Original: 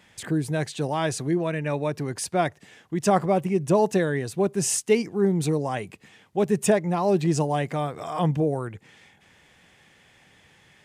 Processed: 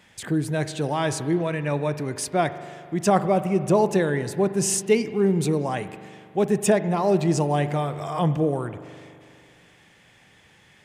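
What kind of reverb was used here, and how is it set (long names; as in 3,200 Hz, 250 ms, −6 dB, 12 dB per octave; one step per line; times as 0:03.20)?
spring reverb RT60 2.3 s, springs 41 ms, chirp 60 ms, DRR 11.5 dB
level +1 dB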